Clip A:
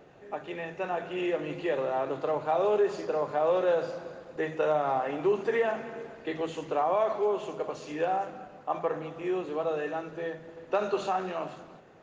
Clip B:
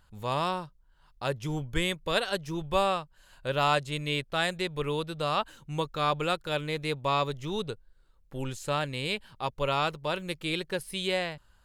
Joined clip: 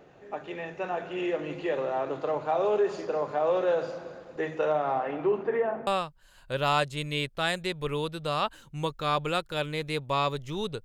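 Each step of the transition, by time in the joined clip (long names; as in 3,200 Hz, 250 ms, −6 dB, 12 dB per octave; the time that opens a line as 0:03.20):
clip A
0:04.65–0:05.87: low-pass filter 6,300 Hz → 1,000 Hz
0:05.87: continue with clip B from 0:02.82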